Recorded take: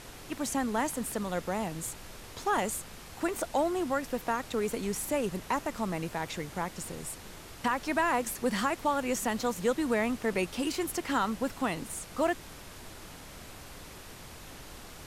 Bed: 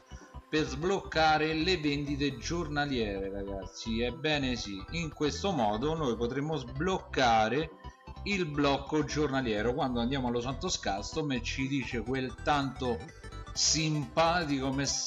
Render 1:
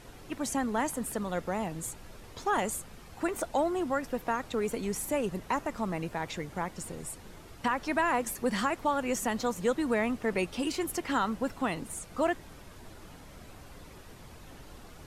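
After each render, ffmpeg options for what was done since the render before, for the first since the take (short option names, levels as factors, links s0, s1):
-af "afftdn=nr=8:nf=-48"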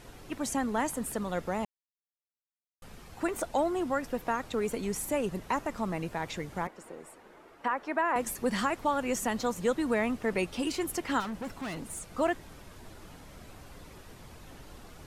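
-filter_complex "[0:a]asettb=1/sr,asplit=3[s0][s1][s2];[s0]atrim=end=6.674[s3];[s1]atrim=start=6.67:end=8.16,asetpts=PTS-STARTPTS,afade=t=in:d=0.004:c=qsin,afade=t=out:st=1.486:d=0.004:c=qsin,acrossover=split=270 2300:gain=0.0891 1 0.2[s4][s5][s6];[s4][s5][s6]amix=inputs=3:normalize=0[s7];[s2]atrim=start=8.156[s8];[s3][s7]acrossfade=d=0.004:c1=hsin:c2=qsin[s9];[s9][s8]acrossfade=d=0.004:c1=qsin:c2=hsin,asettb=1/sr,asplit=3[s10][s11][s12];[s10]atrim=end=11.204[s13];[s11]atrim=start=11.2:end=12.02,asetpts=PTS-STARTPTS,afade=t=in:d=0.004:c=qsin,afade=t=out:st=0.816:d=0.004:c=qsin,volume=47.3,asoftclip=hard,volume=0.0211[s14];[s12]atrim=start=12.016[s15];[s13][s14]acrossfade=d=0.004:c1=hsin:c2=qsin[s16];[s16][s15]acrossfade=d=0.004:c1=qsin:c2=hsin,asplit=3[s17][s18][s19];[s17]atrim=end=1.65,asetpts=PTS-STARTPTS,afade=t=out:st=1.646:d=0.004:c=hsin[s20];[s18]atrim=start=1.65:end=2.82,asetpts=PTS-STARTPTS,volume=0[s21];[s19]atrim=start=2.82,asetpts=PTS-STARTPTS,afade=t=in:d=0.004:c=hsin[s22];[s20][s21][s22]concat=n=3:v=0:a=1"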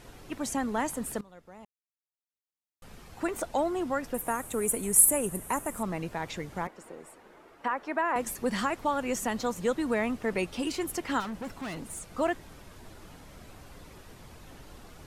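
-filter_complex "[0:a]asettb=1/sr,asplit=3[s0][s1][s2];[s0]atrim=end=4.144[s3];[s1]atrim=start=4.14:end=5.83,asetpts=PTS-STARTPTS,afade=t=in:d=0.004:c=qsin,afade=t=out:st=1.686:d=0.004:c=qsin,highshelf=f=6900:t=q:w=3:g=13.5[s4];[s2]atrim=start=5.826[s5];[s3][s4]acrossfade=d=0.004:c1=hsin:c2=qsin[s6];[s6][s5]acrossfade=d=0.004:c1=qsin:c2=hsin,asplit=2[s7][s8];[s7]atrim=end=1.21,asetpts=PTS-STARTPTS,afade=t=out:st=1.206:d=0.004:c=hsin:silence=0.105925[s9];[s8]atrim=start=1.21,asetpts=PTS-STARTPTS,afade=t=in:d=1.71:c=qua:silence=0.105925[s10];[s9][s10]concat=n=2:v=0:a=1"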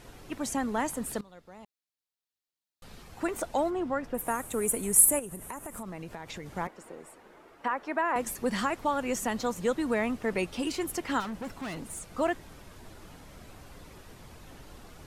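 -filter_complex "[0:a]asettb=1/sr,asplit=3[s0][s1][s2];[s0]atrim=end=1.094[s3];[s1]atrim=start=1.09:end=3.03,asetpts=PTS-STARTPTS,afade=t=in:d=0.004:c=qsin,afade=t=out:st=1.936:d=0.004:c=qsin,equalizer=f=4100:w=2.2:g=6[s4];[s2]atrim=start=3.026[s5];[s3][s4]acrossfade=d=0.004:c1=hsin:c2=qsin[s6];[s6][s5]acrossfade=d=0.004:c1=qsin:c2=hsin,asplit=3[s7][s8][s9];[s7]afade=t=out:st=3.69:d=0.02[s10];[s8]lowpass=f=2200:p=1,afade=t=in:st=3.69:d=0.02,afade=t=out:st=4.17:d=0.02[s11];[s9]afade=t=in:st=4.17:d=0.02[s12];[s10][s11][s12]amix=inputs=3:normalize=0,asettb=1/sr,asplit=3[s13][s14][s15];[s13]atrim=end=5.194[s16];[s14]atrim=start=5.19:end=6.46,asetpts=PTS-STARTPTS,afade=t=in:d=0.004:c=qsin,afade=t=out:st=1.266:d=0.004:c=qsin,acompressor=threshold=0.0158:ratio=6:attack=3.2:release=140:knee=1:detection=peak[s17];[s15]atrim=start=6.456[s18];[s16][s17]acrossfade=d=0.004:c1=hsin:c2=qsin[s19];[s19][s18]acrossfade=d=0.004:c1=qsin:c2=hsin"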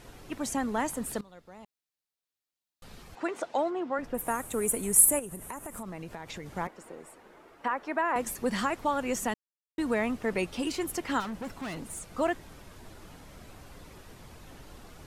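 -filter_complex "[0:a]asettb=1/sr,asplit=3[s0][s1][s2];[s0]atrim=end=3.154[s3];[s1]atrim=start=3.15:end=3.99,asetpts=PTS-STARTPTS,afade=t=in:d=0.004:c=qsin,afade=t=out:st=0.836:d=0.004:c=qsin,highpass=290,lowpass=5300[s4];[s2]atrim=start=3.986[s5];[s3][s4]acrossfade=d=0.004:c1=hsin:c2=qsin[s6];[s6][s5]acrossfade=d=0.004:c1=qsin:c2=hsin,asplit=3[s7][s8][s9];[s7]atrim=end=9.34,asetpts=PTS-STARTPTS,afade=t=out:st=9.336:d=0.004:c=hsin[s10];[s8]atrim=start=9.34:end=9.78,asetpts=PTS-STARTPTS,volume=0[s11];[s9]atrim=start=9.78,asetpts=PTS-STARTPTS,afade=t=in:d=0.004:c=hsin[s12];[s10][s11][s12]concat=n=3:v=0:a=1"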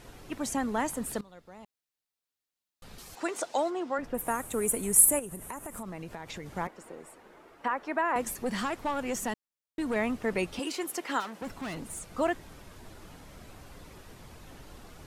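-filter_complex "[0:a]asettb=1/sr,asplit=3[s0][s1][s2];[s0]atrim=end=2.984[s3];[s1]atrim=start=2.98:end=3.98,asetpts=PTS-STARTPTS,afade=t=in:d=0.004:c=qsin,afade=t=out:st=0.996:d=0.004:c=qsin,bass=f=250:g=-4,treble=f=4000:g=12[s4];[s2]atrim=start=3.976[s5];[s3][s4]acrossfade=d=0.004:c1=hsin:c2=qsin[s6];[s6][s5]acrossfade=d=0.004:c1=qsin:c2=hsin,asettb=1/sr,asplit=3[s7][s8][s9];[s7]atrim=end=8.344[s10];[s8]atrim=start=8.34:end=9.96,asetpts=PTS-STARTPTS,afade=t=in:d=0.004:c=qsin,afade=t=out:st=1.616:d=0.004:c=qsin,aeval=exprs='(tanh(15.8*val(0)+0.2)-tanh(0.2))/15.8':c=same[s11];[s9]atrim=start=9.956[s12];[s10][s11]acrossfade=d=0.004:c1=hsin:c2=qsin[s13];[s13][s12]acrossfade=d=0.004:c1=qsin:c2=hsin,asettb=1/sr,asplit=3[s14][s15][s16];[s14]atrim=end=10.594[s17];[s15]atrim=start=10.59:end=11.42,asetpts=PTS-STARTPTS,afade=t=in:d=0.004:c=qsin,afade=t=out:st=0.826:d=0.004:c=qsin,highpass=330[s18];[s16]atrim=start=11.416[s19];[s17][s18]acrossfade=d=0.004:c1=hsin:c2=qsin[s20];[s20][s19]acrossfade=d=0.004:c1=qsin:c2=hsin"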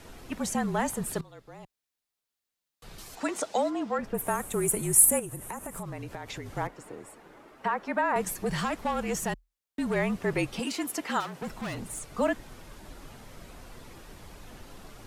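-filter_complex "[0:a]asplit=2[s0][s1];[s1]asoftclip=type=tanh:threshold=0.0631,volume=0.282[s2];[s0][s2]amix=inputs=2:normalize=0,afreqshift=-41"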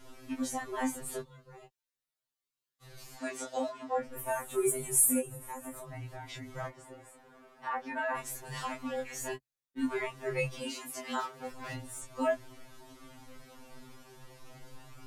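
-af "flanger=delay=18.5:depth=4.3:speed=0.16,afftfilt=real='re*2.45*eq(mod(b,6),0)':imag='im*2.45*eq(mod(b,6),0)':win_size=2048:overlap=0.75"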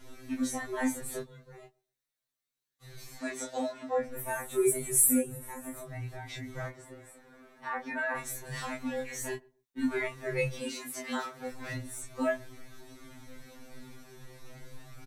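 -filter_complex "[0:a]asplit=2[s0][s1];[s1]adelay=16,volume=0.708[s2];[s0][s2]amix=inputs=2:normalize=0,asplit=2[s3][s4];[s4]adelay=128,lowpass=f=880:p=1,volume=0.0668,asplit=2[s5][s6];[s6]adelay=128,lowpass=f=880:p=1,volume=0.25[s7];[s3][s5][s7]amix=inputs=3:normalize=0"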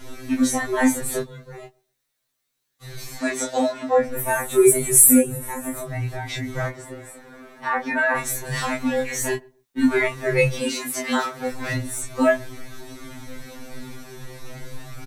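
-af "volume=3.98,alimiter=limit=0.891:level=0:latency=1"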